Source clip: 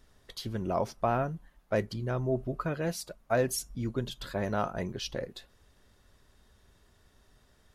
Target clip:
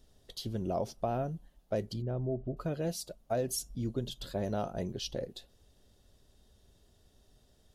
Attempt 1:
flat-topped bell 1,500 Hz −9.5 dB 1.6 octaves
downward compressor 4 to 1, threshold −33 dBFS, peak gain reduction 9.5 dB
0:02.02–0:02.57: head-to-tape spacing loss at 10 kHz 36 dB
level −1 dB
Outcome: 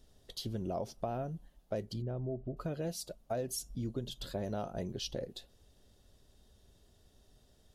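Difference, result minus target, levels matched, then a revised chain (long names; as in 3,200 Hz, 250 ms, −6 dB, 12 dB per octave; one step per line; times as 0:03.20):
downward compressor: peak gain reduction +4.5 dB
flat-topped bell 1,500 Hz −9.5 dB 1.6 octaves
downward compressor 4 to 1, threshold −27 dBFS, peak gain reduction 5 dB
0:02.02–0:02.57: head-to-tape spacing loss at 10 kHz 36 dB
level −1 dB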